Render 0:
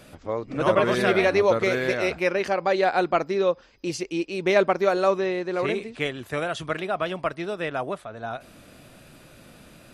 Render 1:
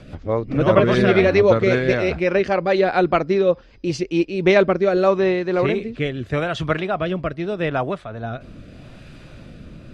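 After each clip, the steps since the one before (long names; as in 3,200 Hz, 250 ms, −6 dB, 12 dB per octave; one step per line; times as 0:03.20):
low-shelf EQ 170 Hz +11.5 dB
rotating-speaker cabinet horn 5 Hz, later 0.8 Hz, at 0:03.89
low-pass filter 4,900 Hz 12 dB per octave
level +6 dB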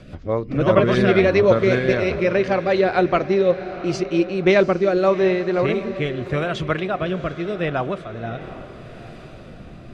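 notch filter 850 Hz, Q 13
feedback delay with all-pass diffusion 737 ms, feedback 47%, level −13.5 dB
on a send at −19.5 dB: convolution reverb RT60 0.25 s, pre-delay 5 ms
on the sum: level −1 dB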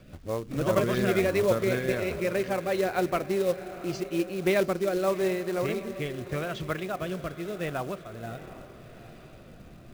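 floating-point word with a short mantissa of 2 bits
level −9 dB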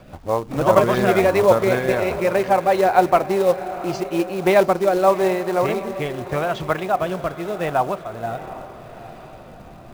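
parametric band 850 Hz +14 dB 0.9 octaves
level +5 dB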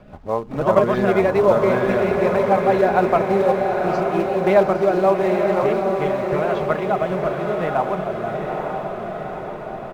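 low-pass filter 2,000 Hz 6 dB per octave
comb filter 4.8 ms, depth 31%
feedback delay with all-pass diffusion 908 ms, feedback 59%, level −4 dB
level −1 dB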